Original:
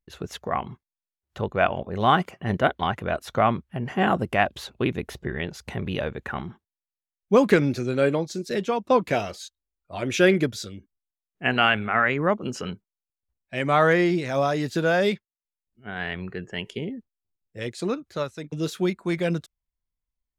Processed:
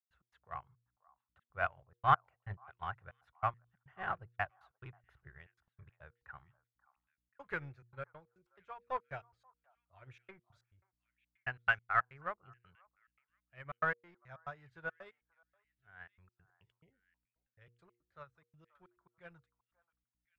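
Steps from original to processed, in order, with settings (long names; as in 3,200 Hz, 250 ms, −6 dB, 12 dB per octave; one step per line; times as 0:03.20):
in parallel at −3.5 dB: hard clipping −21 dBFS, distortion −7 dB
on the sum: drawn EQ curve 130 Hz 0 dB, 230 Hz −26 dB, 330 Hz −17 dB, 1,400 Hz +2 dB, 5,600 Hz −21 dB
mains hum 60 Hz, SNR 32 dB
gate pattern ".x.xxxx.x.x" 140 BPM −60 dB
hum removal 118.8 Hz, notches 4
on a send: echo through a band-pass that steps 533 ms, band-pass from 960 Hz, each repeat 1.4 octaves, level −12 dB
on the sum: expander for the loud parts 2.5 to 1, over −32 dBFS
level −5.5 dB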